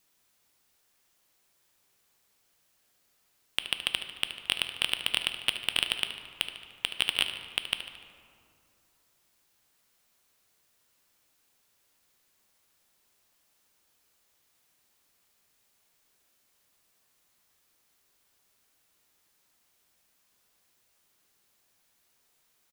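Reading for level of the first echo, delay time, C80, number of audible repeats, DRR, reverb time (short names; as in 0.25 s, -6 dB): -12.5 dB, 74 ms, 9.5 dB, 3, 6.0 dB, 2.4 s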